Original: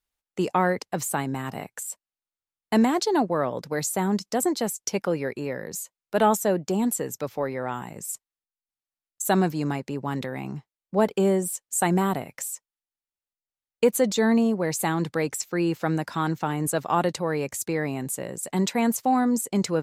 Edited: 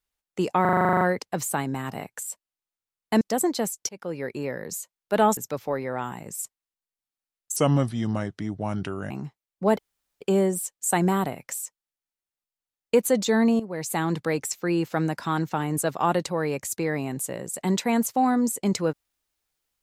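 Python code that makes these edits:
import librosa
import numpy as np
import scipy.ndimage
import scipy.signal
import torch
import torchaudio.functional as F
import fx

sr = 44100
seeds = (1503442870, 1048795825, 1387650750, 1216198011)

y = fx.edit(x, sr, fx.stutter(start_s=0.61, slice_s=0.04, count=11),
    fx.cut(start_s=2.81, length_s=1.42),
    fx.fade_in_from(start_s=4.91, length_s=0.48, floor_db=-23.5),
    fx.cut(start_s=6.39, length_s=0.68),
    fx.speed_span(start_s=9.26, length_s=1.16, speed=0.75),
    fx.insert_room_tone(at_s=11.1, length_s=0.42),
    fx.fade_in_from(start_s=14.49, length_s=0.46, floor_db=-12.5), tone=tone)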